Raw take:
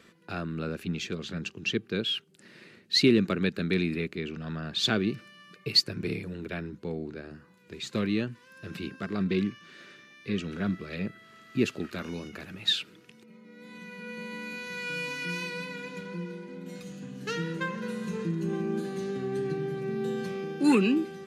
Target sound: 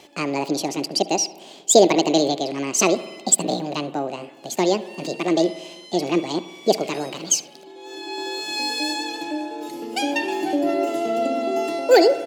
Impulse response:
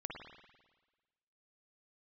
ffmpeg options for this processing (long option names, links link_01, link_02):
-filter_complex "[0:a]highshelf=frequency=8900:gain=-11,asetrate=76440,aresample=44100,aecho=1:1:72:0.0631,asplit=2[link_01][link_02];[1:a]atrim=start_sample=2205[link_03];[link_02][link_03]afir=irnorm=-1:irlink=0,volume=-8.5dB[link_04];[link_01][link_04]amix=inputs=2:normalize=0,volume=7.5dB"